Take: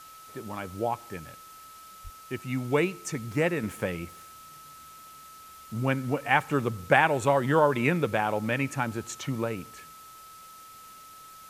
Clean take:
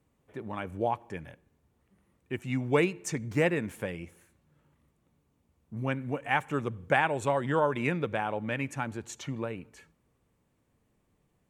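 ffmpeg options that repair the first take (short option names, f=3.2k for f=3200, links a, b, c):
-filter_complex "[0:a]bandreject=f=1.3k:w=30,asplit=3[a][b][c];[a]afade=t=out:st=2.03:d=0.02[d];[b]highpass=f=140:w=0.5412,highpass=f=140:w=1.3066,afade=t=in:st=2.03:d=0.02,afade=t=out:st=2.15:d=0.02[e];[c]afade=t=in:st=2.15:d=0.02[f];[d][e][f]amix=inputs=3:normalize=0,afwtdn=0.0025,asetnsamples=n=441:p=0,asendcmd='3.63 volume volume -4.5dB',volume=0dB"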